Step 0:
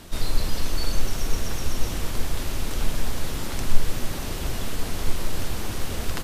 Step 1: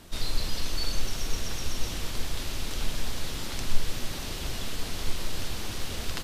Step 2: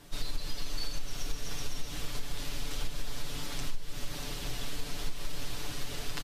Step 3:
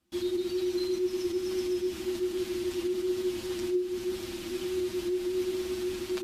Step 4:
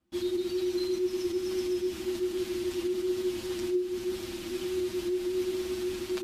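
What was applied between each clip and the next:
dynamic EQ 4000 Hz, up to +7 dB, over -51 dBFS, Q 0.71; gain -6 dB
comb 6.9 ms, depth 79%; compressor 12:1, threshold -19 dBFS, peak gain reduction 13.5 dB; gain -5.5 dB
gate with hold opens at -35 dBFS; frequency shift -370 Hz; gain -2 dB
mismatched tape noise reduction decoder only

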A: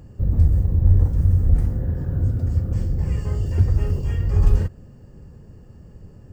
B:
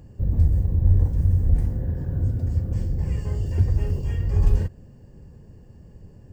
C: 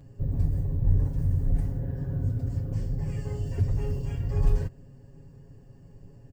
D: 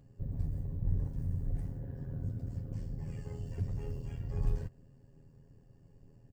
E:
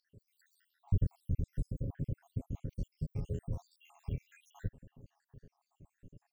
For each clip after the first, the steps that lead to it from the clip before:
notch 1300 Hz, Q 5.3; gain -2.5 dB
comb 7.3 ms, depth 92%; gain -5.5 dB
AM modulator 81 Hz, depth 40%; gain -7 dB
random spectral dropouts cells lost 79%; gain +6 dB

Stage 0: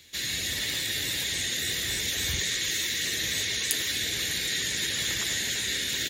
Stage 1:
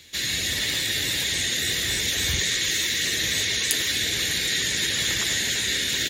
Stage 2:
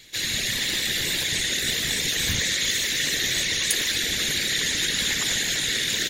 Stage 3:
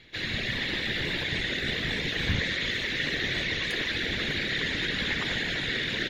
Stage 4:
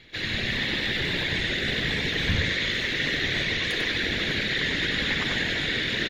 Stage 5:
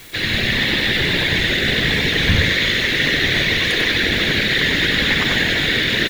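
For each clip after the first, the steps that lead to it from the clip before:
high shelf 12000 Hz -5 dB; gain +5 dB
whisperiser
air absorption 350 m; gain +2 dB
echo 95 ms -5.5 dB; gain +2 dB
added noise white -52 dBFS; gain +9 dB

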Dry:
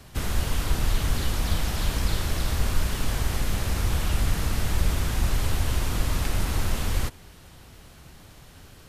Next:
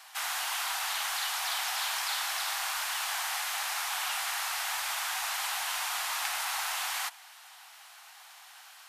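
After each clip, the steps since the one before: elliptic high-pass 760 Hz, stop band 50 dB; gain +3 dB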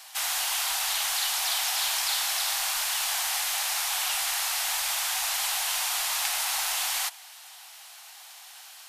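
bell 1300 Hz -9 dB 2 oct; gain +8 dB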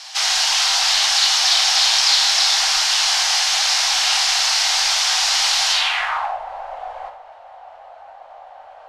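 low-pass sweep 5300 Hz -> 570 Hz, 5.69–6.38; reverse; upward compressor, threshold -40 dBFS; reverse; reverb RT60 0.55 s, pre-delay 10 ms, DRR 2.5 dB; gain +7 dB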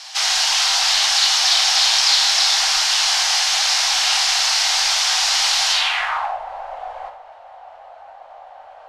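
nothing audible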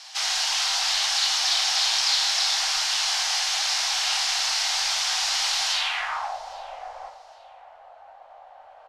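feedback echo 0.812 s, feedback 28%, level -24 dB; gain -7 dB

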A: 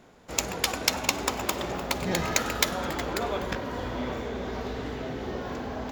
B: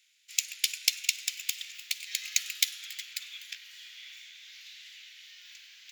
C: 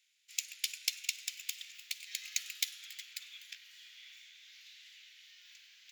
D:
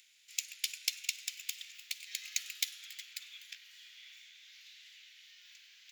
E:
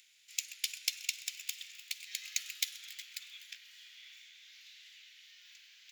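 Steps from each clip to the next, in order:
steep high-pass 2300 Hz 36 dB/oct
soft clip -6.5 dBFS, distortion -21 dB; gain -7 dB
upward compressor, threshold -56 dBFS
thinning echo 0.129 s, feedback 67%, high-pass 180 Hz, level -20.5 dB

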